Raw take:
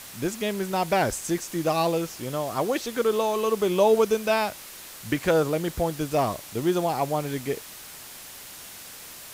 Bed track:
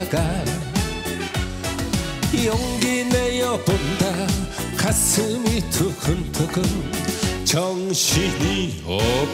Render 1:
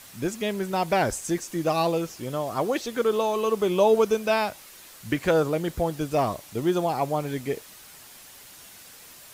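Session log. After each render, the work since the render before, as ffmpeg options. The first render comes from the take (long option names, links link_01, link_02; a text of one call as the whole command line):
ffmpeg -i in.wav -af "afftdn=noise_reduction=6:noise_floor=-43" out.wav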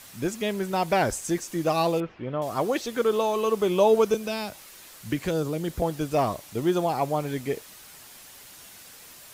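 ffmpeg -i in.wav -filter_complex "[0:a]asettb=1/sr,asplit=3[link_01][link_02][link_03];[link_01]atrim=end=2.004[link_04];[link_02]atrim=start=2:end=2.42,asetpts=PTS-STARTPTS,afade=type=in:duration=0.004:curve=qsin,afade=type=out:start_time=0.416:duration=0.004:curve=qsin,lowpass=frequency=2700:width=0.5412,lowpass=frequency=2700:width=1.3066[link_05];[link_03]atrim=start=2.416[link_06];[link_04][link_05]acrossfade=duration=0.004:curve1=hsin:curve2=qsin[link_07];[link_07][link_06]acrossfade=duration=0.004:curve1=qsin:curve2=hsin,asettb=1/sr,asplit=3[link_08][link_09][link_10];[link_08]atrim=end=4.144[link_11];[link_09]atrim=start=4.14:end=5.82,asetpts=PTS-STARTPTS,afade=type=in:duration=0.004:curve=qsin,afade=type=out:start_time=1.676:duration=0.004:curve=qsin,acrossover=split=390|3000[link_12][link_13][link_14];[link_13]acompressor=threshold=-37dB:ratio=3:attack=3.2:release=140:knee=2.83:detection=peak[link_15];[link_12][link_15][link_14]amix=inputs=3:normalize=0[link_16];[link_10]atrim=start=5.816[link_17];[link_11][link_16]acrossfade=duration=0.004:curve1=hsin:curve2=qsin[link_18];[link_18][link_17]acrossfade=duration=0.004:curve1=qsin:curve2=hsin" out.wav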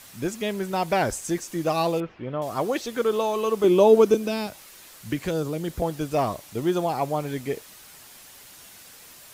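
ffmpeg -i in.wav -filter_complex "[0:a]asettb=1/sr,asplit=3[link_01][link_02][link_03];[link_01]atrim=end=3.644[link_04];[link_02]atrim=start=3.64:end=4.47,asetpts=PTS-STARTPTS,afade=type=in:duration=0.004:curve=qsin,afade=type=out:start_time=0.826:duration=0.004:curve=qsin,equalizer=frequency=300:width=1.7:gain=12[link_05];[link_03]atrim=start=4.466[link_06];[link_04][link_05]acrossfade=duration=0.004:curve1=hsin:curve2=qsin[link_07];[link_07][link_06]acrossfade=duration=0.004:curve1=qsin:curve2=hsin" out.wav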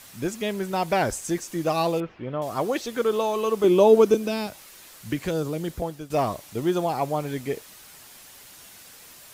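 ffmpeg -i in.wav -filter_complex "[0:a]asplit=2[link_01][link_02];[link_01]atrim=end=6.1,asetpts=PTS-STARTPTS,afade=type=out:start_time=5.65:duration=0.45:silence=0.237137[link_03];[link_02]atrim=start=6.1,asetpts=PTS-STARTPTS,afade=type=in:duration=0.004:curve=hsin:silence=0.237137[link_04];[link_03][link_04]concat=n=2:v=0:a=1" out.wav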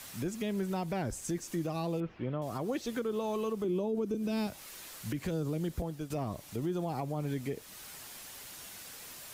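ffmpeg -i in.wav -filter_complex "[0:a]acrossover=split=300[link_01][link_02];[link_02]acompressor=threshold=-42dB:ratio=2[link_03];[link_01][link_03]amix=inputs=2:normalize=0,alimiter=level_in=1dB:limit=-24dB:level=0:latency=1:release=114,volume=-1dB" out.wav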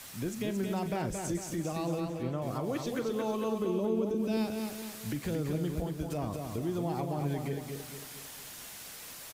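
ffmpeg -i in.wav -filter_complex "[0:a]asplit=2[link_01][link_02];[link_02]adelay=41,volume=-13.5dB[link_03];[link_01][link_03]amix=inputs=2:normalize=0,aecho=1:1:225|450|675|900|1125|1350:0.562|0.253|0.114|0.0512|0.0231|0.0104" out.wav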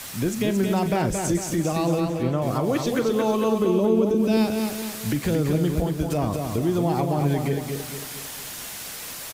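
ffmpeg -i in.wav -af "volume=10.5dB" out.wav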